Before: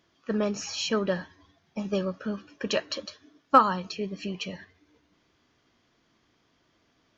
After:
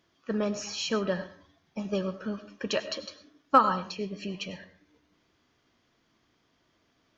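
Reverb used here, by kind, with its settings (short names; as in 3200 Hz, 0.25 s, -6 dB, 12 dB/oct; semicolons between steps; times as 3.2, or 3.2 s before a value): digital reverb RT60 0.41 s, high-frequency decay 0.55×, pre-delay 60 ms, DRR 13 dB; gain -2 dB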